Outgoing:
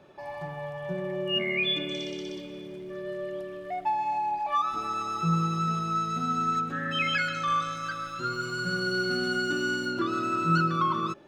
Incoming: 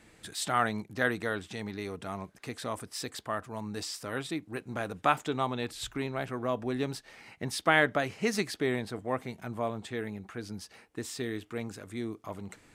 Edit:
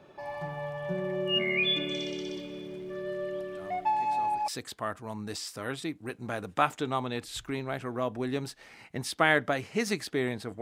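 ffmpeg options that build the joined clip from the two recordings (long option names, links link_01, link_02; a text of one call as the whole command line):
ffmpeg -i cue0.wav -i cue1.wav -filter_complex "[1:a]asplit=2[link_01][link_02];[0:a]apad=whole_dur=10.61,atrim=end=10.61,atrim=end=4.482[link_03];[link_02]atrim=start=2.948:end=9.08[link_04];[link_01]atrim=start=2.01:end=2.95,asetpts=PTS-STARTPTS,volume=-12dB,afade=type=in:duration=0.004:curve=hsin,afade=type=out:start_time=0.936:duration=0.004:curve=hsin,adelay=3540[link_05];[link_03][link_04]acrossfade=duration=0.004:curve1=hsin:curve2=hsin[link_06];[link_06][link_05]amix=inputs=2:normalize=0" out.wav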